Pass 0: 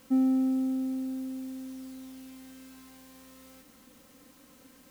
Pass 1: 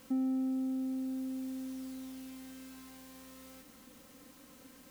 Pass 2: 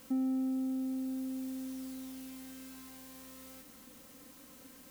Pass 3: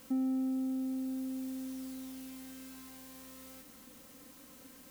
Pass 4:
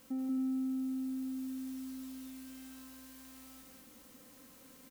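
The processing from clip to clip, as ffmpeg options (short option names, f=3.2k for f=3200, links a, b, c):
-af "acompressor=threshold=-37dB:ratio=2"
-af "highshelf=f=7k:g=5"
-af anull
-af "aecho=1:1:186.6|268.2:0.794|0.355,volume=-5dB"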